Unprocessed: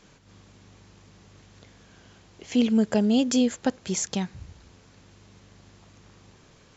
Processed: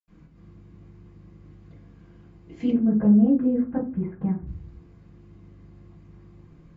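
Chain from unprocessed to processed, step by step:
0:02.62–0:04.39: low-pass filter 1,700 Hz 24 dB per octave
convolution reverb, pre-delay 77 ms, DRR −60 dB

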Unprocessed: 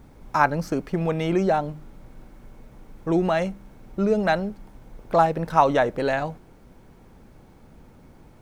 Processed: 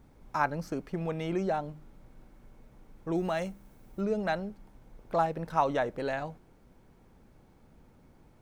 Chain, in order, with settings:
0:03.15–0:04.01: high-shelf EQ 7,400 Hz +11.5 dB
level −9 dB

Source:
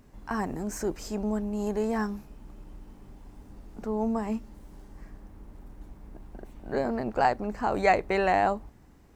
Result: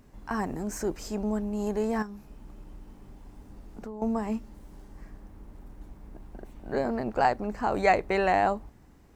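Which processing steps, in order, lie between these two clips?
0:02.02–0:04.02: downward compressor 5 to 1, threshold −37 dBFS, peak gain reduction 11.5 dB

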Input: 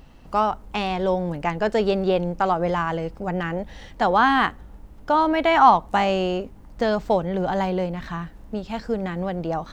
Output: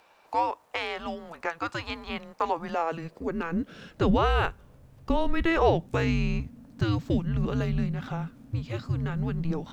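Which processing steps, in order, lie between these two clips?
high-pass filter sweep 1,200 Hz → 89 Hz, 0:02.43–0:06.34
frequency shifter −330 Hz
dynamic equaliser 610 Hz, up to −7 dB, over −31 dBFS, Q 0.85
level −3 dB

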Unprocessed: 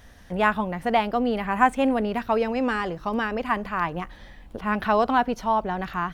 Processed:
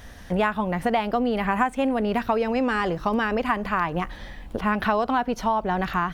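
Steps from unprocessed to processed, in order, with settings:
downward compressor 6 to 1, threshold −26 dBFS, peak gain reduction 13 dB
level +6.5 dB

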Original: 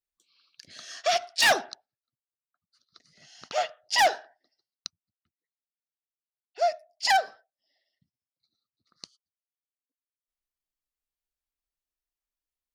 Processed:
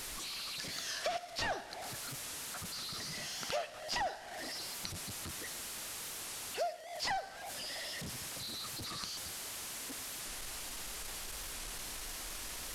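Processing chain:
linear delta modulator 64 kbit/s, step −39 dBFS
downward compressor 6 to 1, threshold −38 dBFS, peak gain reduction 18 dB
on a send at −16 dB: convolution reverb RT60 2.0 s, pre-delay 42 ms
on the sum: wow of a warped record 45 rpm, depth 100 cents
level +3 dB

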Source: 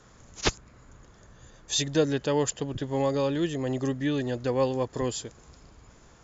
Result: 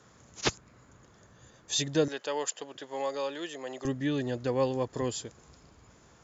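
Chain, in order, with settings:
high-pass filter 88 Hz 12 dB per octave, from 0:02.08 560 Hz, from 0:03.85 68 Hz
level −2.5 dB

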